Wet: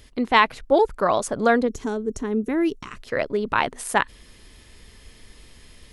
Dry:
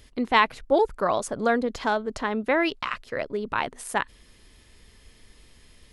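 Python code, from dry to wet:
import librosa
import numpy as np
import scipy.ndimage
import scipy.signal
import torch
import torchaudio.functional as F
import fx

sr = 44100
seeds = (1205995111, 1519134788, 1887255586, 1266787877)

p1 = fx.spec_box(x, sr, start_s=1.68, length_s=1.3, low_hz=470.0, high_hz=5500.0, gain_db=-15)
p2 = fx.rider(p1, sr, range_db=10, speed_s=2.0)
p3 = p1 + (p2 * librosa.db_to_amplitude(-2.0))
y = p3 * librosa.db_to_amplitude(-1.0)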